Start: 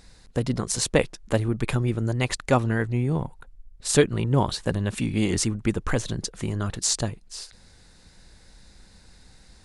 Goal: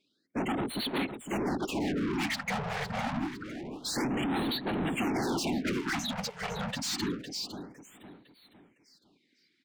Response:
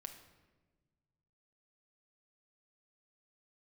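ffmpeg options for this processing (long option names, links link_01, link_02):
-filter_complex "[0:a]highpass=130,afftdn=noise_reduction=31:noise_floor=-35,adynamicequalizer=threshold=0.0141:dfrequency=210:dqfactor=2:tfrequency=210:tqfactor=2:attack=5:release=100:ratio=0.375:range=1.5:mode=boostabove:tftype=bell,asplit=2[link_01][link_02];[link_02]alimiter=limit=-15dB:level=0:latency=1:release=32,volume=-1.5dB[link_03];[link_01][link_03]amix=inputs=2:normalize=0,acontrast=55,asplit=3[link_04][link_05][link_06];[link_04]bandpass=frequency=270:width_type=q:width=8,volume=0dB[link_07];[link_05]bandpass=frequency=2290:width_type=q:width=8,volume=-6dB[link_08];[link_06]bandpass=frequency=3010:width_type=q:width=8,volume=-9dB[link_09];[link_07][link_08][link_09]amix=inputs=3:normalize=0,asoftclip=type=tanh:threshold=-27dB,afftfilt=real='hypot(re,im)*cos(2*PI*random(0))':imag='hypot(re,im)*sin(2*PI*random(1))':win_size=512:overlap=0.75,asplit=2[link_10][link_11];[link_11]highpass=frequency=720:poles=1,volume=34dB,asoftclip=type=tanh:threshold=-24dB[link_12];[link_10][link_12]amix=inputs=2:normalize=0,lowpass=frequency=5400:poles=1,volume=-6dB,asplit=2[link_13][link_14];[link_14]aecho=0:1:507|1014|1521|2028:0.316|0.123|0.0481|0.0188[link_15];[link_13][link_15]amix=inputs=2:normalize=0,afftfilt=real='re*(1-between(b*sr/1024,290*pow(6500/290,0.5+0.5*sin(2*PI*0.27*pts/sr))/1.41,290*pow(6500/290,0.5+0.5*sin(2*PI*0.27*pts/sr))*1.41))':imag='im*(1-between(b*sr/1024,290*pow(6500/290,0.5+0.5*sin(2*PI*0.27*pts/sr))/1.41,290*pow(6500/290,0.5+0.5*sin(2*PI*0.27*pts/sr))*1.41))':win_size=1024:overlap=0.75"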